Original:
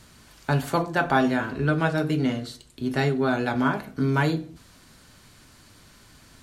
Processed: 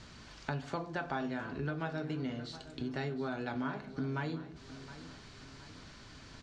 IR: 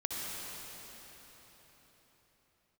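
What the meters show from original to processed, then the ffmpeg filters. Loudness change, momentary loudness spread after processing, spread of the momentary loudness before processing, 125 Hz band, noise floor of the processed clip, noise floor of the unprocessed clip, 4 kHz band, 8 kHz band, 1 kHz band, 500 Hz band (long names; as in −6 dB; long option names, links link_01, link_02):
−14.0 dB, 15 LU, 10 LU, −13.5 dB, −53 dBFS, −53 dBFS, −11.0 dB, below −10 dB, −14.0 dB, −13.5 dB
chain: -filter_complex "[0:a]lowpass=frequency=6200:width=0.5412,lowpass=frequency=6200:width=1.3066,acompressor=threshold=-39dB:ratio=3,asplit=2[link_01][link_02];[link_02]aecho=0:1:716|1432|2148|2864:0.178|0.0854|0.041|0.0197[link_03];[link_01][link_03]amix=inputs=2:normalize=0"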